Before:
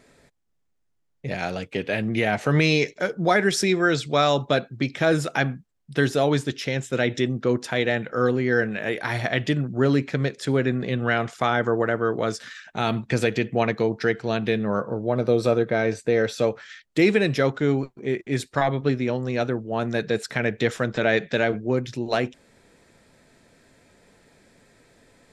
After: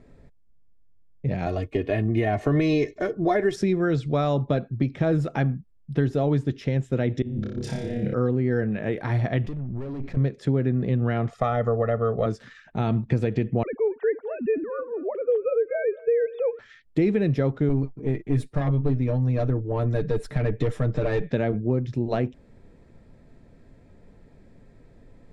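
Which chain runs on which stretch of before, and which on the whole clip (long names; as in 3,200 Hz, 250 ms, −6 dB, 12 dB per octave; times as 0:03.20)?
0:01.46–0:03.56: high-shelf EQ 9,300 Hz +10 dB + comb filter 2.8 ms, depth 70% + hollow resonant body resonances 600/1,100/1,800 Hz, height 7 dB
0:07.22–0:08.14: parametric band 1,100 Hz −15 dB 1.4 octaves + compressor whose output falls as the input rises −35 dBFS + flutter between parallel walls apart 5 metres, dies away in 0.71 s
0:09.44–0:10.17: gain on one half-wave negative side −7 dB + tube saturation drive 34 dB, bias 0.7 + background raised ahead of every attack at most 27 dB per second
0:11.31–0:12.26: parametric band 140 Hz −6 dB 1.1 octaves + comb filter 1.6 ms, depth 96%
0:13.63–0:16.59: three sine waves on the formant tracks + notch filter 580 Hz, Q 10 + repeating echo 229 ms, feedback 47%, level −21.5 dB
0:17.69–0:21.31: parametric band 10,000 Hz +13.5 dB 0.4 octaves + comb filter 6.7 ms, depth 76% + tube saturation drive 17 dB, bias 0.35
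whole clip: spectral tilt −4 dB per octave; notch filter 1,500 Hz, Q 18; downward compressor 2.5 to 1, threshold −16 dBFS; level −4 dB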